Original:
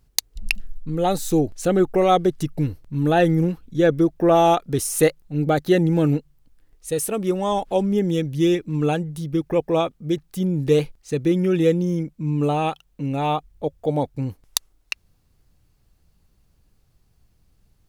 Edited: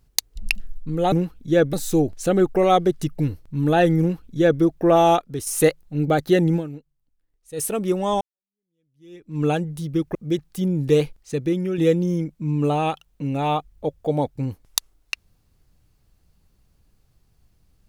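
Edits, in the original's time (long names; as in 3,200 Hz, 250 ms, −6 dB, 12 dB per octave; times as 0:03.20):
0:03.39–0:04.00: duplicate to 0:01.12
0:04.60–0:04.86: clip gain −6.5 dB
0:05.95–0:06.99: duck −16 dB, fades 0.37 s exponential
0:07.60–0:08.80: fade in exponential
0:09.54–0:09.94: remove
0:10.98–0:11.57: fade out linear, to −6.5 dB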